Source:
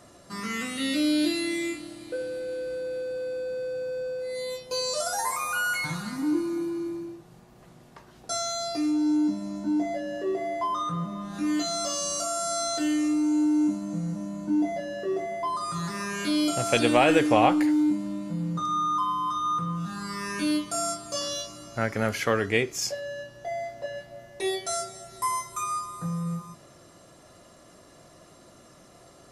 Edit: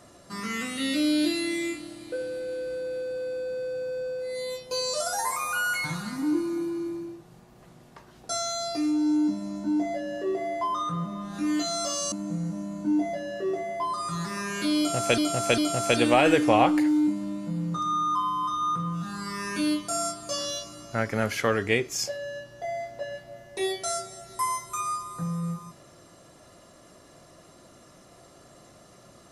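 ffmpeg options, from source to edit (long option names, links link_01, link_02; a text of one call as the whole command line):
ffmpeg -i in.wav -filter_complex "[0:a]asplit=4[link_01][link_02][link_03][link_04];[link_01]atrim=end=12.122[link_05];[link_02]atrim=start=13.748:end=16.812[link_06];[link_03]atrim=start=16.408:end=16.812[link_07];[link_04]atrim=start=16.408[link_08];[link_05][link_06]acrossfade=duration=0.004:curve1=hsin:curve2=hsin[link_09];[link_09][link_07]acrossfade=duration=0.004:curve1=hsin:curve2=hsin[link_10];[link_10][link_08]acrossfade=duration=0.004:curve1=hsin:curve2=hsin" out.wav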